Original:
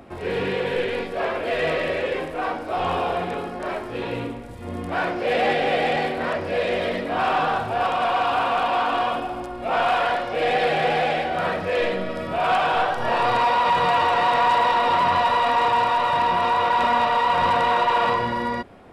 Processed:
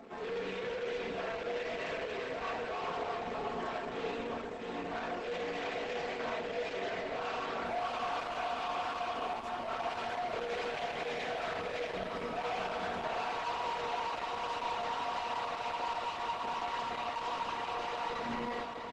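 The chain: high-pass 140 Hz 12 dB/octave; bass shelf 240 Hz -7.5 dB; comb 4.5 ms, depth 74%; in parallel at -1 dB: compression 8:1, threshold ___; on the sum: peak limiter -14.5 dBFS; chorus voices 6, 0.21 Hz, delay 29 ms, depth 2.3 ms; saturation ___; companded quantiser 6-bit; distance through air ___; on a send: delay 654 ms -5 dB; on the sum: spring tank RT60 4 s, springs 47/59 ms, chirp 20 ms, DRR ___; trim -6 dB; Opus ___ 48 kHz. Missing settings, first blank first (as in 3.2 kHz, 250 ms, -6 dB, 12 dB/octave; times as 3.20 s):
-27 dBFS, -27.5 dBFS, 51 m, 14 dB, 12 kbps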